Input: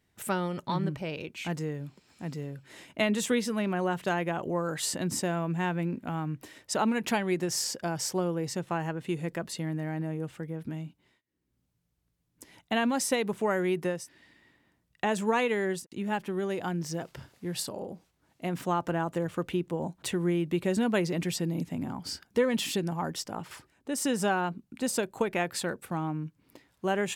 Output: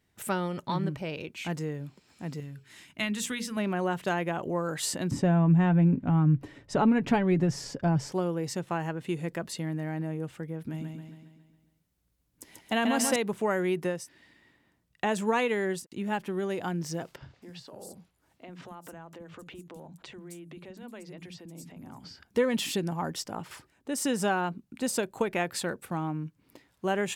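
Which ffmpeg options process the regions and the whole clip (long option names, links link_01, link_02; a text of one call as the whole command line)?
ffmpeg -i in.wav -filter_complex "[0:a]asettb=1/sr,asplit=3[link_01][link_02][link_03];[link_01]atrim=end=2.404[link_04];[link_02]atrim=start=2.4:end=3.57,asetpts=PTS-STARTPTS,afade=type=in:duration=0.004:curve=qsin,afade=type=out:start_time=1.166:duration=0.004:curve=qsin,equalizer=frequency=530:width=0.93:gain=-13.5,bandreject=frequency=60:width_type=h:width=6,bandreject=frequency=120:width_type=h:width=6,bandreject=frequency=180:width_type=h:width=6,bandreject=frequency=240:width_type=h:width=6,bandreject=frequency=300:width_type=h:width=6,bandreject=frequency=360:width_type=h:width=6,bandreject=frequency=420:width_type=h:width=6,bandreject=frequency=480:width_type=h:width=6,bandreject=frequency=540:width_type=h:width=6[link_05];[link_03]atrim=start=3.566[link_06];[link_04][link_05]acrossfade=duration=0.004:curve1=hsin:curve2=qsin[link_07];[link_07][link_06]acrossfade=duration=0.004:curve1=qsin:curve2=hsin,asettb=1/sr,asplit=3[link_08][link_09][link_10];[link_08]atrim=end=5.114[link_11];[link_09]atrim=start=5.11:end=8.12,asetpts=PTS-STARTPTS,afade=type=in:duration=0.004:curve=qsin,afade=type=out:start_time=3.006:duration=0.004:curve=qsin,aemphasis=mode=reproduction:type=riaa,aecho=1:1:7.1:0.36,atrim=end_sample=132741[link_12];[link_10]atrim=start=8.116[link_13];[link_11][link_12]acrossfade=duration=0.004:curve1=hsin:curve2=qsin[link_14];[link_14][link_13]acrossfade=duration=0.004:curve1=qsin:curve2=hsin,asettb=1/sr,asplit=3[link_15][link_16][link_17];[link_15]atrim=end=10.604[link_18];[link_16]atrim=start=10.6:end=13.16,asetpts=PTS-STARTPTS,afade=type=in:duration=0.004:curve=qsin,afade=type=out:start_time=2.556:duration=0.004:curve=qsin,highshelf=frequency=8900:gain=4.5,aecho=1:1:137|274|411|548|685|822|959:0.596|0.322|0.174|0.0938|0.0506|0.0274|0.0148,atrim=end_sample=112896[link_19];[link_17]atrim=start=13.156[link_20];[link_18][link_19]acrossfade=duration=0.004:curve1=hsin:curve2=qsin[link_21];[link_21][link_20]acrossfade=duration=0.004:curve1=qsin:curve2=hsin,asettb=1/sr,asplit=3[link_22][link_23][link_24];[link_22]atrim=end=17.164[link_25];[link_23]atrim=start=17.16:end=22.28,asetpts=PTS-STARTPTS,afade=type=in:duration=0.004:curve=qsin,afade=type=out:start_time=5.116:duration=0.004:curve=qsin,acompressor=threshold=-40dB:ratio=10:attack=3.2:release=140:knee=1:detection=peak,acrossover=split=240|5800[link_26][link_27][link_28];[link_26]adelay=50[link_29];[link_28]adelay=260[link_30];[link_29][link_27][link_30]amix=inputs=3:normalize=0,atrim=end_sample=225792[link_31];[link_24]atrim=start=22.276[link_32];[link_25][link_31]acrossfade=duration=0.004:curve1=hsin:curve2=qsin[link_33];[link_33][link_32]acrossfade=duration=0.004:curve1=qsin:curve2=hsin" out.wav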